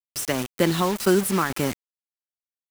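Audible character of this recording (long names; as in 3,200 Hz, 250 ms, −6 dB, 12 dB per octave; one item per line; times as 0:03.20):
tremolo saw down 2 Hz, depth 55%
a quantiser's noise floor 6 bits, dither none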